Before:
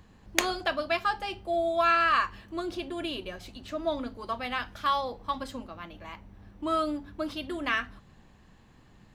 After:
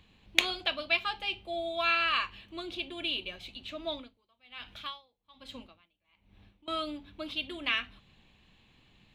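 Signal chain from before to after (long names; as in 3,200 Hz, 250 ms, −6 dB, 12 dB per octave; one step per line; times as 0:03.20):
flat-topped bell 3,000 Hz +13 dB 1.1 octaves
0:03.91–0:06.68: tremolo with a sine in dB 1.2 Hz, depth 32 dB
level −7.5 dB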